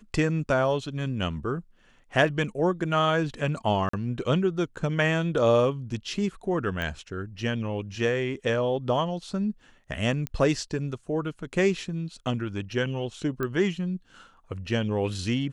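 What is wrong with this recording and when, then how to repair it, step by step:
3.89–3.93 s: dropout 44 ms
6.82 s: pop -19 dBFS
10.27 s: pop -16 dBFS
13.43 s: pop -17 dBFS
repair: de-click; interpolate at 3.89 s, 44 ms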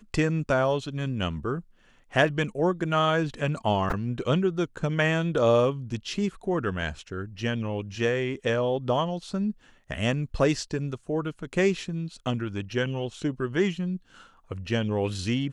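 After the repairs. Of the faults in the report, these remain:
nothing left

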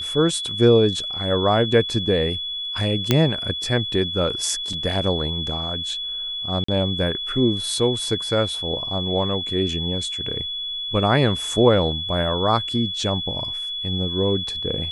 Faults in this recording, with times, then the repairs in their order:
whine 3.4 kHz -26 dBFS
3.11 s: pop -2 dBFS
4.73 s: dropout 3.5 ms
6.64–6.68 s: dropout 44 ms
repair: de-click; band-stop 3.4 kHz, Q 30; interpolate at 4.73 s, 3.5 ms; interpolate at 6.64 s, 44 ms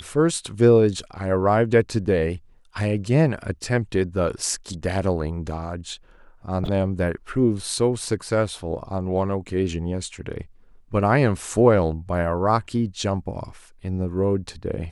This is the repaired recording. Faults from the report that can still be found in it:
nothing left

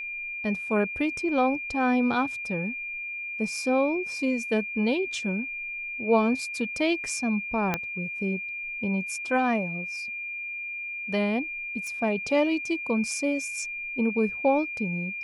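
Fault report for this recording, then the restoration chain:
whine 2.4 kHz -32 dBFS
7.74 s: pop -11 dBFS
11.87 s: pop -25 dBFS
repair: de-click; band-stop 2.4 kHz, Q 30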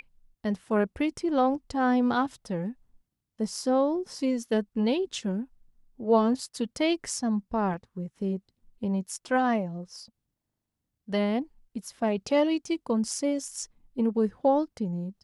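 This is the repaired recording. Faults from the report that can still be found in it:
7.74 s: pop

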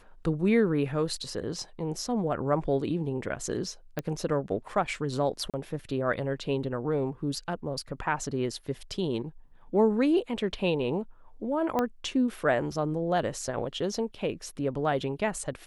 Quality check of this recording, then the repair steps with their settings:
3.99 s: pop -17 dBFS
5.50–5.54 s: dropout 37 ms
11.79 s: pop -14 dBFS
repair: de-click; interpolate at 5.50 s, 37 ms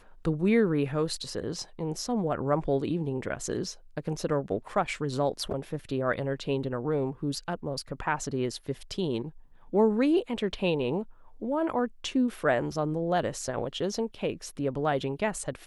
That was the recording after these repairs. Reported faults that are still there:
3.99 s: pop
11.79 s: pop

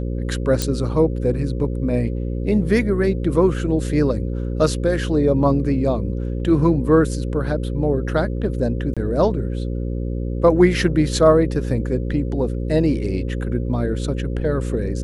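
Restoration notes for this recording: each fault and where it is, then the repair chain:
buzz 60 Hz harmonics 9 -24 dBFS
0.62 s: pop -6 dBFS
8.94–8.97 s: dropout 26 ms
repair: de-click; de-hum 60 Hz, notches 9; interpolate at 8.94 s, 26 ms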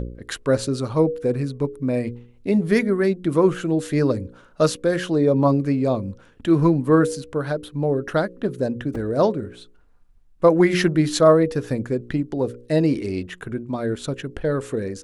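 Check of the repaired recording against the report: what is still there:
nothing left

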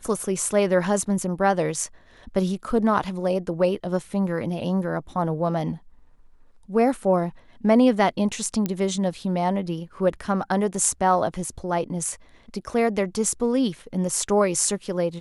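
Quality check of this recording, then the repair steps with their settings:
8.66 s: pop -12 dBFS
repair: de-click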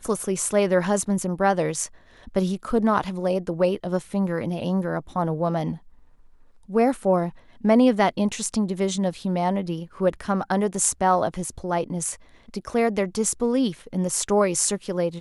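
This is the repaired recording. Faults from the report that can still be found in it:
nothing left

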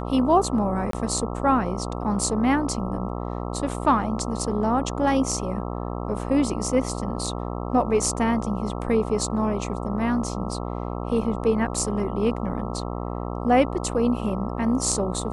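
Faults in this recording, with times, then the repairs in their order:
buzz 60 Hz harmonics 22 -30 dBFS
0.91–0.93 s: dropout 23 ms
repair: de-hum 60 Hz, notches 22; interpolate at 0.91 s, 23 ms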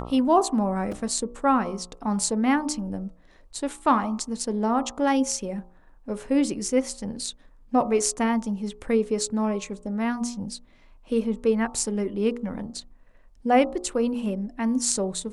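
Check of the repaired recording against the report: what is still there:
nothing left

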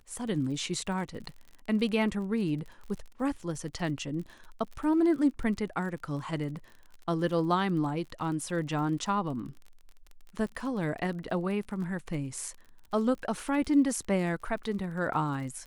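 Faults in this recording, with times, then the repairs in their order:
crackle 39 per s -39 dBFS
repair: de-click

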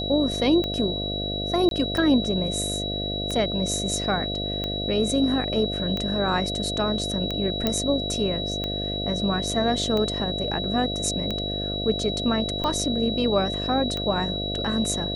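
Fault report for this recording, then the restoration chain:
buzz 50 Hz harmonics 14 -31 dBFS
tick 45 rpm -15 dBFS
whine 3.9 kHz -29 dBFS
1.69–1.71 s: dropout 22 ms
7.67 s: pop -9 dBFS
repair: de-click; de-hum 50 Hz, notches 14; band-stop 3.9 kHz, Q 30; interpolate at 1.69 s, 22 ms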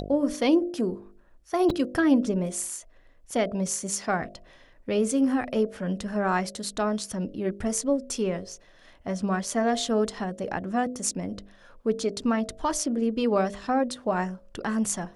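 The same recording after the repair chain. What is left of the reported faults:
nothing left

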